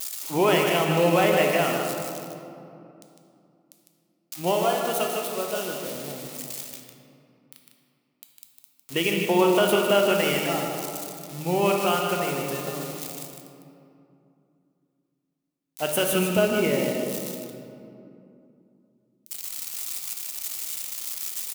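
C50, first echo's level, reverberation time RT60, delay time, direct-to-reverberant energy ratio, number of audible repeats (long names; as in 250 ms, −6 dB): 1.0 dB, −6.0 dB, 2.7 s, 153 ms, 0.0 dB, 1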